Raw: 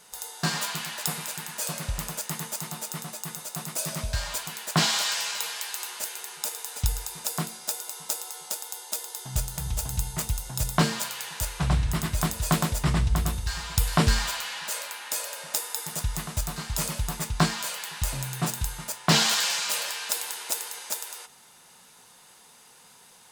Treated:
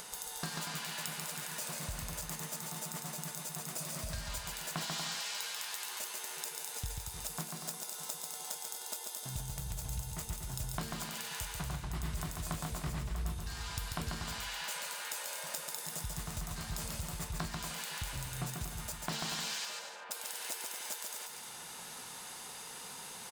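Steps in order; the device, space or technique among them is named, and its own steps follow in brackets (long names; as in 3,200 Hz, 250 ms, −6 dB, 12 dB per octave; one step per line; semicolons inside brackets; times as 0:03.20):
upward and downward compression (upward compression, threshold −43 dBFS; downward compressor 4 to 1, threshold −42 dBFS, peak gain reduction 21.5 dB)
0:19.65–0:20.11: low-pass filter 1,300 Hz 12 dB per octave
bouncing-ball delay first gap 140 ms, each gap 0.7×, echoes 5
level +1 dB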